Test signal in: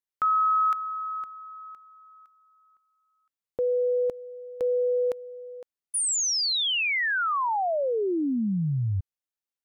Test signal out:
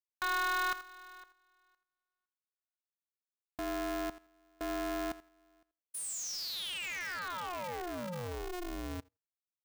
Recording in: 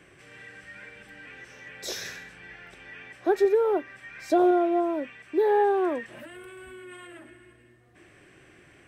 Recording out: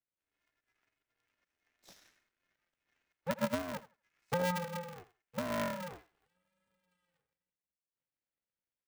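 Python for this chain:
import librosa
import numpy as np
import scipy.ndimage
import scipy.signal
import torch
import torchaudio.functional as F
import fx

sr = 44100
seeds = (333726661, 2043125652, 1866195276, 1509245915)

y = fx.power_curve(x, sr, exponent=2.0)
y = fx.echo_thinned(y, sr, ms=83, feedback_pct=21, hz=560.0, wet_db=-13.5)
y = y * np.sign(np.sin(2.0 * np.pi * 180.0 * np.arange(len(y)) / sr))
y = F.gain(torch.from_numpy(y), -9.0).numpy()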